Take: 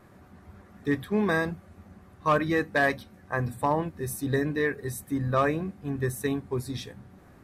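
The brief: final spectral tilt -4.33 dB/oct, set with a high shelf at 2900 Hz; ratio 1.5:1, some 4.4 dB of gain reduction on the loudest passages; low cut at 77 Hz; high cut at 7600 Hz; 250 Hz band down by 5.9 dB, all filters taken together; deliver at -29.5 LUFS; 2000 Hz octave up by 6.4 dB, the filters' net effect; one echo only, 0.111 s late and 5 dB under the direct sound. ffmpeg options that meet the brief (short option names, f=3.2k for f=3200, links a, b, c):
-af "highpass=77,lowpass=7.6k,equalizer=f=250:t=o:g=-8,equalizer=f=2k:t=o:g=5.5,highshelf=f=2.9k:g=7.5,acompressor=threshold=-28dB:ratio=1.5,aecho=1:1:111:0.562,volume=-0.5dB"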